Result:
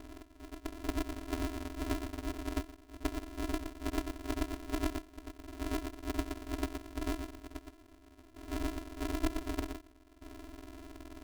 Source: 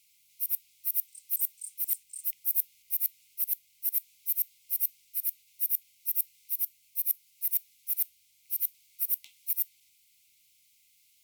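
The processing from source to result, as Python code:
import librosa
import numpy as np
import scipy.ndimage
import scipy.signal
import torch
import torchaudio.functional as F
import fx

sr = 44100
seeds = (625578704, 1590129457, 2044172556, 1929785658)

y = fx.octave_mirror(x, sr, pivot_hz=760.0)
y = y + 10.0 ** (-6.0 / 20.0) * np.pad(y, (int(121 * sr / 1000.0), 0))[:len(y)]
y = fx.step_gate(y, sr, bpm=69, pattern='x..xxxxxxxx', floor_db=-12.0, edge_ms=4.5)
y = fx.peak_eq(y, sr, hz=140.0, db=14.0, octaves=0.2)
y = fx.spec_freeze(y, sr, seeds[0], at_s=7.78, hold_s=0.56)
y = y * np.sign(np.sin(2.0 * np.pi * 170.0 * np.arange(len(y)) / sr))
y = y * librosa.db_to_amplitude(9.0)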